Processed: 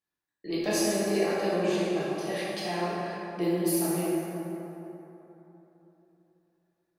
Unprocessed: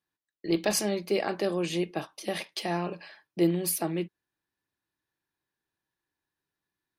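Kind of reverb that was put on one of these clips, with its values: plate-style reverb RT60 3.5 s, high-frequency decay 0.45×, DRR -8.5 dB; trim -7.5 dB

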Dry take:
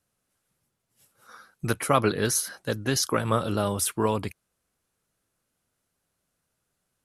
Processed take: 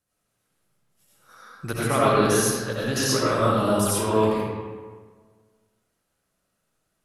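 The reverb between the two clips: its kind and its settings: algorithmic reverb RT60 1.6 s, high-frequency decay 0.6×, pre-delay 45 ms, DRR -8 dB; trim -4.5 dB

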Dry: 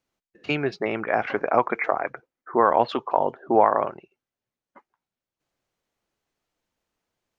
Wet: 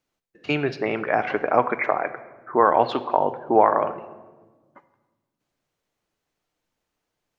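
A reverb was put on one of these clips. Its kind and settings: simulated room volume 1000 m³, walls mixed, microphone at 0.45 m; trim +1 dB

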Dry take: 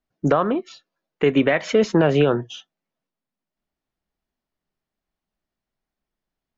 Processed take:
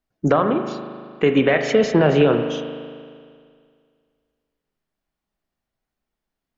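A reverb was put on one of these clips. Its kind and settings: spring tank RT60 2.1 s, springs 38 ms, chirp 70 ms, DRR 5.5 dB; trim +1 dB

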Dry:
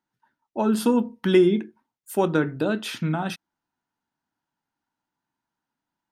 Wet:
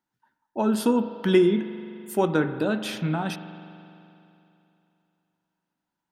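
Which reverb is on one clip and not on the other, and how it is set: spring tank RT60 2.9 s, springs 42 ms, chirp 40 ms, DRR 10.5 dB; trim -1 dB

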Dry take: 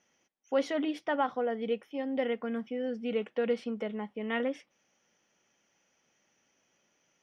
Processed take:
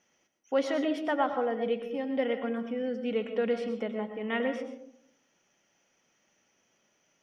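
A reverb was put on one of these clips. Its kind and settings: algorithmic reverb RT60 0.73 s, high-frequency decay 0.3×, pre-delay 75 ms, DRR 7 dB; trim +1 dB

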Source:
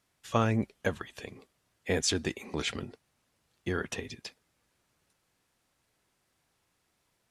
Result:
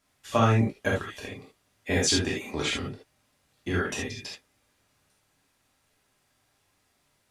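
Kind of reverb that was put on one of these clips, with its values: gated-style reverb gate 100 ms flat, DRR -4 dB

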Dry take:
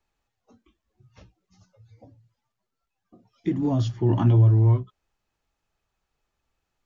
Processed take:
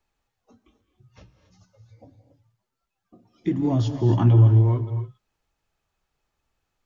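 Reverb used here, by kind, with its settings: gated-style reverb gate 300 ms rising, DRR 9.5 dB; trim +1 dB

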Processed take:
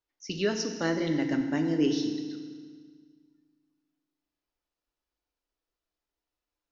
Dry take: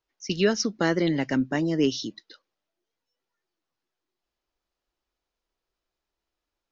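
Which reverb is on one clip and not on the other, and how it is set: FDN reverb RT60 1.7 s, low-frequency decay 1.3×, high-frequency decay 0.95×, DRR 4.5 dB; trim -6.5 dB

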